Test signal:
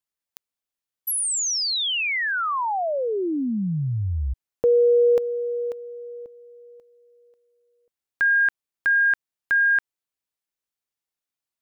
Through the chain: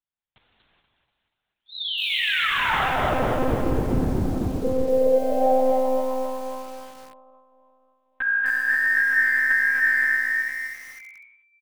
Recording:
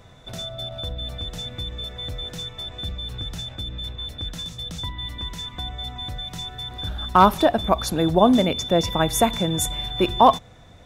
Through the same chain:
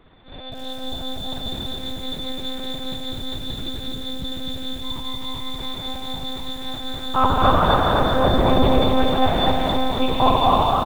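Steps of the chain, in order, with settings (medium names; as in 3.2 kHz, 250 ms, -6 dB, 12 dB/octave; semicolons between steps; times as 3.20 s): frequency-shifting echo 242 ms, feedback 52%, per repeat +120 Hz, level -6 dB; gated-style reverb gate 450 ms flat, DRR -3.5 dB; monotone LPC vocoder at 8 kHz 260 Hz; bit-crushed delay 254 ms, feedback 35%, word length 6-bit, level -4 dB; trim -5.5 dB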